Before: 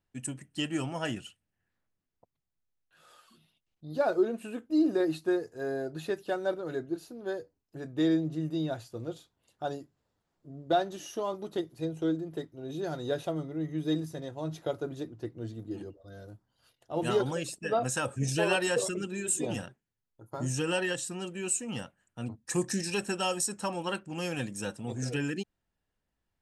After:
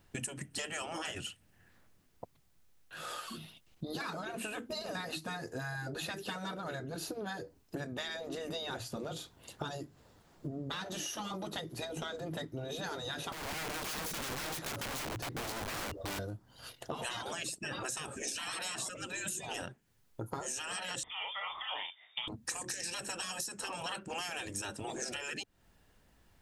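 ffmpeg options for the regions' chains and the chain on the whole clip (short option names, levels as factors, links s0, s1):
-filter_complex "[0:a]asettb=1/sr,asplit=3[s0][s1][s2];[s0]atrim=end=13.324[s3];[s1]atrim=start=13.32:end=16.19,asetpts=PTS-STARTPTS,afade=t=in:d=0.004:c=qsin,afade=t=out:st=2.866:d=0.004:c=qsin,equalizer=f=520:t=o:w=2.4:g=-2.5,acompressor=threshold=0.01:ratio=5:attack=3.2:release=140:knee=1:detection=peak,aeval=exprs='(mod(200*val(0)+1,2)-1)/200':c=same[s4];[s2]atrim=start=16.186[s5];[s3][s4]acrossfade=d=0.004:c1=hsin:c2=qsin[s6];[s6][s5]acrossfade=d=0.004:c1=qsin:c2=hsin,asettb=1/sr,asplit=3[s7][s8][s9];[s7]atrim=end=21.034[s10];[s8]atrim=start=21.03:end=22.28,asetpts=PTS-STARTPTS,afade=t=in:d=0.004:c=qsin,afade=t=out:st=1.246:d=0.004:c=qsin,asplit=2[s11][s12];[s12]adelay=37,volume=0.631[s13];[s11][s13]amix=inputs=2:normalize=0,atrim=end_sample=55125,lowpass=f=3100:t=q:w=0.5098,lowpass=f=3100:t=q:w=0.6013,lowpass=f=3100:t=q:w=0.9,lowpass=f=3100:t=q:w=2.563,afreqshift=-3700[s14];[s9]atrim=start=22.276[s15];[s10][s14]acrossfade=d=0.004:c1=hsin:c2=qsin[s16];[s16][s15]acrossfade=d=0.004:c1=qsin:c2=hsin,afftfilt=real='re*lt(hypot(re,im),0.0562)':imag='im*lt(hypot(re,im),0.0562)':win_size=1024:overlap=0.75,acompressor=threshold=0.002:ratio=12,volume=7.5"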